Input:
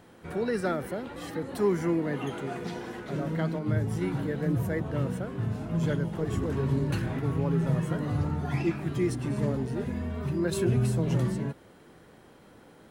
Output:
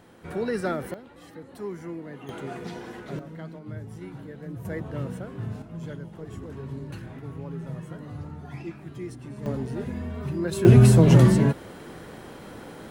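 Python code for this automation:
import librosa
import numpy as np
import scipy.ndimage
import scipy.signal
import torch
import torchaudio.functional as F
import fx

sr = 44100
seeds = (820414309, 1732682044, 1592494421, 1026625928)

y = fx.gain(x, sr, db=fx.steps((0.0, 1.0), (0.94, -9.5), (2.29, -1.0), (3.19, -10.0), (4.65, -2.5), (5.62, -9.0), (9.46, 0.0), (10.65, 12.0)))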